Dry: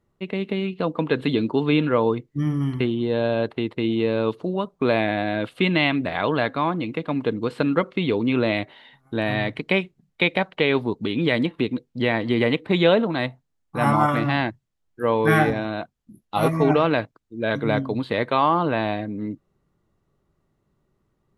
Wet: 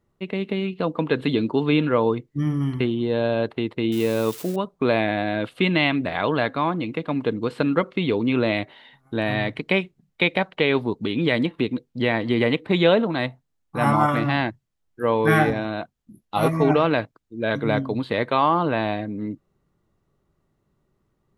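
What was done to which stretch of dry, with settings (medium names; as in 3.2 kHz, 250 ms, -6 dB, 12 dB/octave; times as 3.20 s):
3.92–4.56 s: zero-crossing glitches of -25 dBFS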